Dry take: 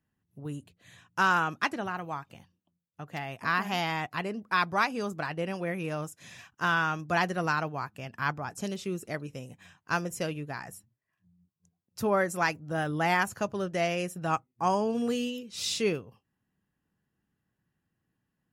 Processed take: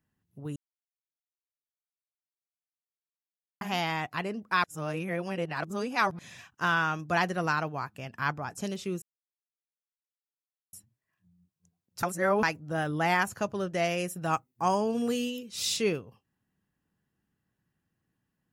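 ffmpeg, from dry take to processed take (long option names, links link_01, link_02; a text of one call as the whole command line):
ffmpeg -i in.wav -filter_complex "[0:a]asettb=1/sr,asplit=3[link_01][link_02][link_03];[link_01]atrim=end=13.844[link_04];[link_02]atrim=start=13.84:end=15.77,asetpts=PTS-STARTPTS,afade=type=in:duration=0.004:curve=qsin,afade=type=out:start_time=1.926:duration=0.004:curve=qsin,highshelf=frequency=10000:gain=9[link_05];[link_03]atrim=start=15.766[link_06];[link_04][link_05]acrossfade=duration=0.004:curve1=hsin:curve2=qsin[link_07];[link_07][link_06]acrossfade=duration=0.004:curve1=qsin:curve2=hsin,asplit=9[link_08][link_09][link_10][link_11][link_12][link_13][link_14][link_15][link_16];[link_08]atrim=end=0.56,asetpts=PTS-STARTPTS,afade=type=out:start_time=0.556:duration=0.004:curve=hsin[link_17];[link_09]atrim=start=0.56:end=3.61,asetpts=PTS-STARTPTS,volume=0[link_18];[link_10]atrim=start=3.61:end=4.642,asetpts=PTS-STARTPTS,afade=type=in:duration=0.004:curve=hsin[link_19];[link_11]atrim=start=4.638:end=6.192,asetpts=PTS-STARTPTS,areverse[link_20];[link_12]atrim=start=6.188:end=9.02,asetpts=PTS-STARTPTS,afade=type=out:start_time=2.828:duration=0.004:curve=hsin[link_21];[link_13]atrim=start=9.02:end=10.73,asetpts=PTS-STARTPTS,volume=0[link_22];[link_14]atrim=start=10.73:end=12.032,asetpts=PTS-STARTPTS,afade=type=in:duration=0.004:curve=hsin[link_23];[link_15]atrim=start=12.028:end=12.432,asetpts=PTS-STARTPTS,areverse[link_24];[link_16]atrim=start=12.428[link_25];[link_17][link_18][link_19]concat=n=3:v=0:a=1[link_26];[link_26][link_20]acrossfade=duration=0.004:curve1=hsin:curve2=hsin[link_27];[link_21][link_22][link_23]concat=n=3:v=0:a=1[link_28];[link_27][link_28]acrossfade=duration=0.004:curve1=hsin:curve2=hsin[link_29];[link_29][link_24]acrossfade=duration=0.004:curve1=hsin:curve2=hsin[link_30];[link_30][link_25]acrossfade=duration=0.004:curve1=hsin:curve2=hsin" out.wav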